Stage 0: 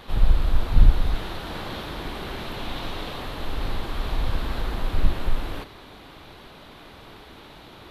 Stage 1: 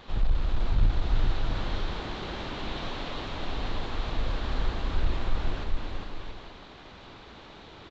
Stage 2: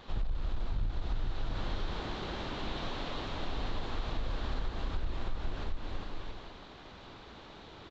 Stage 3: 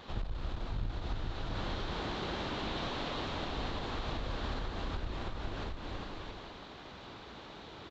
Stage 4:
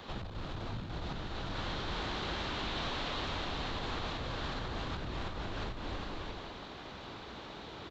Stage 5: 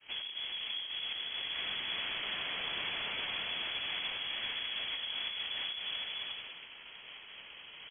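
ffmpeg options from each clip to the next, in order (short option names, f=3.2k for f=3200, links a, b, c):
-af "aresample=16000,asoftclip=type=tanh:threshold=-10.5dB,aresample=44100,aecho=1:1:410|676.5|849.7|962.3|1036:0.631|0.398|0.251|0.158|0.1,volume=-4.5dB"
-af "equalizer=f=2.3k:t=o:w=0.77:g=-2,acompressor=threshold=-26dB:ratio=6,volume=-2.5dB"
-af "highpass=f=63:p=1,volume=2dB"
-filter_complex "[0:a]acrossover=split=100|1000|2000[a][b][c][d];[a]aeval=exprs='0.0112*(abs(mod(val(0)/0.0112+3,4)-2)-1)':c=same[e];[b]alimiter=level_in=14dB:limit=-24dB:level=0:latency=1,volume=-14dB[f];[e][f][c][d]amix=inputs=4:normalize=0,volume=2.5dB"
-af "agate=range=-33dB:threshold=-42dB:ratio=3:detection=peak,lowpass=f=2.9k:t=q:w=0.5098,lowpass=f=2.9k:t=q:w=0.6013,lowpass=f=2.9k:t=q:w=0.9,lowpass=f=2.9k:t=q:w=2.563,afreqshift=-3400"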